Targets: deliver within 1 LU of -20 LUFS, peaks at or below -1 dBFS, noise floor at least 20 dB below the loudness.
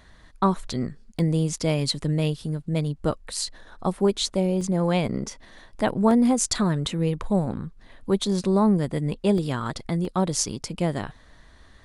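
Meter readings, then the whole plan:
dropouts 5; longest dropout 1.9 ms; loudness -25.0 LUFS; peak level -7.5 dBFS; loudness target -20.0 LUFS
-> interpolate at 1.19/4.61/6.11/9.38/10.05 s, 1.9 ms; trim +5 dB

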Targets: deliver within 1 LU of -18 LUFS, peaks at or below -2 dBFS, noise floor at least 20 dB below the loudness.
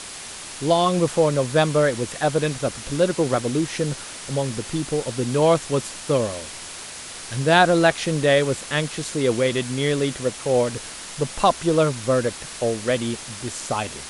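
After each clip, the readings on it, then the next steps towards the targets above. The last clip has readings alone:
noise floor -36 dBFS; noise floor target -42 dBFS; loudness -22.0 LUFS; peak level -1.5 dBFS; loudness target -18.0 LUFS
-> noise reduction 6 dB, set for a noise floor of -36 dBFS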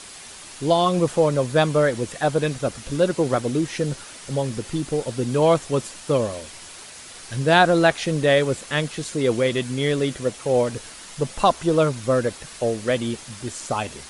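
noise floor -41 dBFS; noise floor target -42 dBFS
-> noise reduction 6 dB, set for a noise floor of -41 dBFS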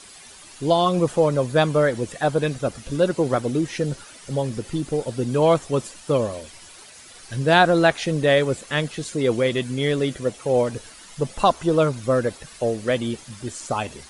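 noise floor -45 dBFS; loudness -22.0 LUFS; peak level -1.5 dBFS; loudness target -18.0 LUFS
-> trim +4 dB; peak limiter -2 dBFS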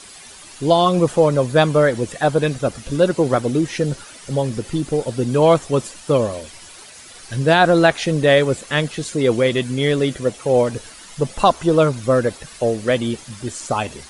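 loudness -18.5 LUFS; peak level -2.0 dBFS; noise floor -41 dBFS

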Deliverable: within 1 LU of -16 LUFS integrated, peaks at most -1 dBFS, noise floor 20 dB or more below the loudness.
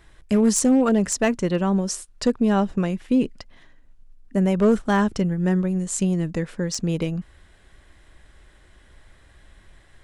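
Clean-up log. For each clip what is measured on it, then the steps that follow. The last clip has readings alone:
clipped samples 0.4%; clipping level -11.0 dBFS; loudness -22.0 LUFS; peak level -11.0 dBFS; loudness target -16.0 LUFS
-> clip repair -11 dBFS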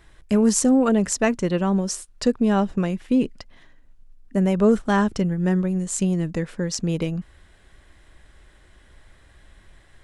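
clipped samples 0.0%; loudness -22.0 LUFS; peak level -6.0 dBFS; loudness target -16.0 LUFS
-> trim +6 dB; peak limiter -1 dBFS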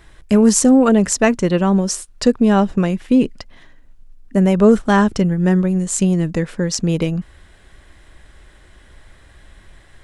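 loudness -16.0 LUFS; peak level -1.0 dBFS; noise floor -47 dBFS

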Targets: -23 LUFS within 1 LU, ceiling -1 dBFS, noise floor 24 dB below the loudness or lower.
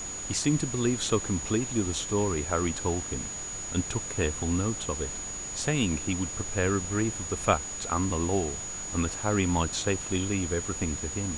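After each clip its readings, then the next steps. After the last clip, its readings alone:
steady tone 6.8 kHz; tone level -35 dBFS; noise floor -37 dBFS; noise floor target -53 dBFS; loudness -29.0 LUFS; peak level -8.5 dBFS; loudness target -23.0 LUFS
-> band-stop 6.8 kHz, Q 30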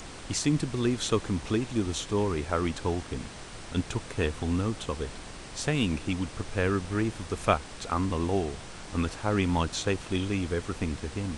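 steady tone not found; noise floor -43 dBFS; noise floor target -54 dBFS
-> noise print and reduce 11 dB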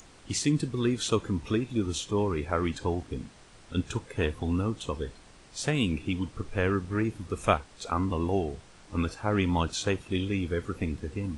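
noise floor -54 dBFS; loudness -30.0 LUFS; peak level -9.0 dBFS; loudness target -23.0 LUFS
-> trim +7 dB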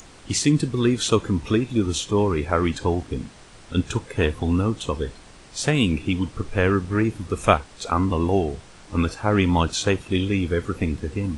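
loudness -23.0 LUFS; peak level -2.0 dBFS; noise floor -47 dBFS

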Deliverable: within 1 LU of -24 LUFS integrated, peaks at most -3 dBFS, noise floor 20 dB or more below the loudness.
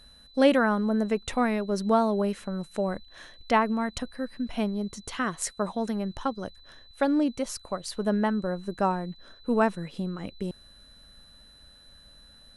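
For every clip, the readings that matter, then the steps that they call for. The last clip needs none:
steady tone 4 kHz; tone level -53 dBFS; loudness -28.0 LUFS; peak level -7.5 dBFS; loudness target -24.0 LUFS
-> band-stop 4 kHz, Q 30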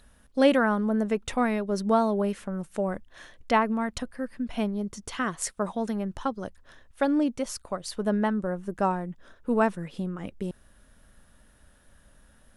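steady tone not found; loudness -28.0 LUFS; peak level -7.5 dBFS; loudness target -24.0 LUFS
-> trim +4 dB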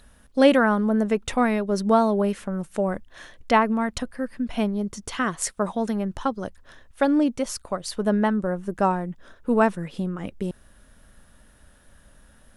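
loudness -24.0 LUFS; peak level -3.5 dBFS; noise floor -55 dBFS

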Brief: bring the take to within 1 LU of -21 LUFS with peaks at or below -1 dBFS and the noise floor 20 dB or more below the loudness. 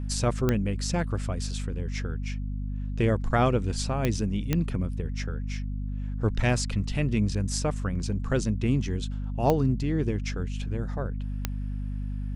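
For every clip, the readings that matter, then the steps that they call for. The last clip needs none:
clicks found 5; hum 50 Hz; highest harmonic 250 Hz; hum level -29 dBFS; loudness -29.0 LUFS; peak level -9.0 dBFS; loudness target -21.0 LUFS
-> de-click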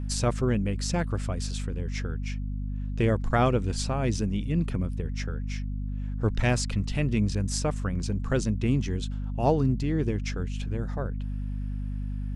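clicks found 0; hum 50 Hz; highest harmonic 250 Hz; hum level -29 dBFS
-> de-hum 50 Hz, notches 5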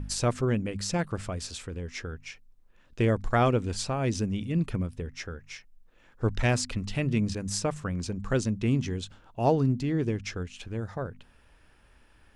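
hum not found; loudness -29.5 LUFS; peak level -10.5 dBFS; loudness target -21.0 LUFS
-> trim +8.5 dB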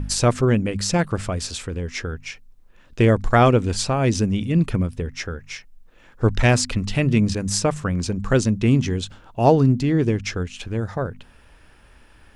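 loudness -21.0 LUFS; peak level -2.0 dBFS; noise floor -51 dBFS

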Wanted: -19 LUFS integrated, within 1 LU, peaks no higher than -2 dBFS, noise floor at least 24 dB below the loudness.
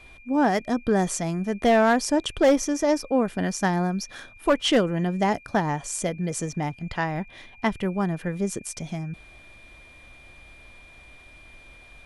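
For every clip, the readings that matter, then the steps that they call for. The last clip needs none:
clipped samples 0.3%; clipping level -12.5 dBFS; steady tone 2.4 kHz; tone level -49 dBFS; loudness -24.5 LUFS; peak level -12.5 dBFS; loudness target -19.0 LUFS
-> clip repair -12.5 dBFS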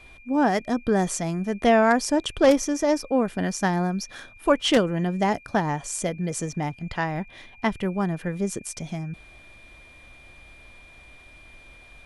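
clipped samples 0.0%; steady tone 2.4 kHz; tone level -49 dBFS
-> band-stop 2.4 kHz, Q 30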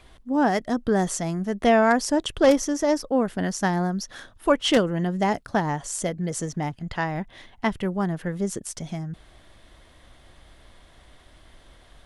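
steady tone not found; loudness -24.5 LUFS; peak level -4.5 dBFS; loudness target -19.0 LUFS
-> trim +5.5 dB; peak limiter -2 dBFS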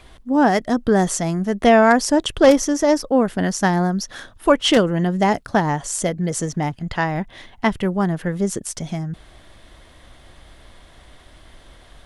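loudness -19.0 LUFS; peak level -2.0 dBFS; noise floor -48 dBFS

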